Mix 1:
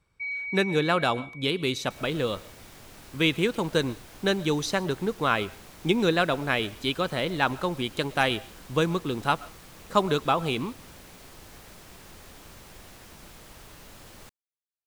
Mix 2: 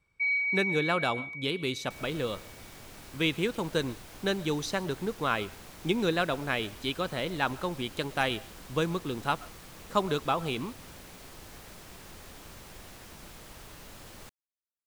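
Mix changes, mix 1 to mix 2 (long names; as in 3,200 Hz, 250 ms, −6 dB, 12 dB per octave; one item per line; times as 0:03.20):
speech −4.5 dB
first sound +5.0 dB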